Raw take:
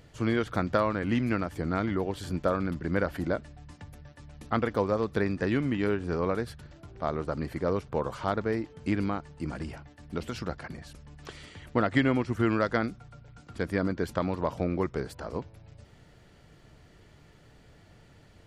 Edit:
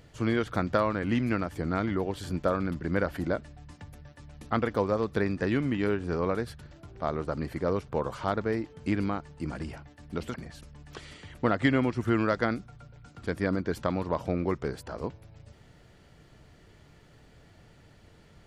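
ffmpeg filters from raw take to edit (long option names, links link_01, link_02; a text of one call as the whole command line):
ffmpeg -i in.wav -filter_complex "[0:a]asplit=2[link_01][link_02];[link_01]atrim=end=10.342[link_03];[link_02]atrim=start=10.658[link_04];[link_03][link_04]acrossfade=duration=0.004:curve1=hsin:curve2=hsin" out.wav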